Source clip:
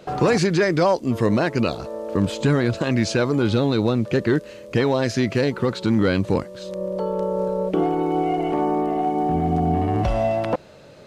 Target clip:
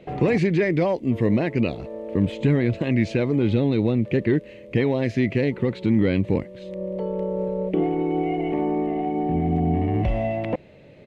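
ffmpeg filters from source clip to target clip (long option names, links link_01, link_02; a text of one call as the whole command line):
ffmpeg -i in.wav -af "firequalizer=gain_entry='entry(270,0);entry(1400,-15);entry(2000,2);entry(5000,-17)':delay=0.05:min_phase=1" out.wav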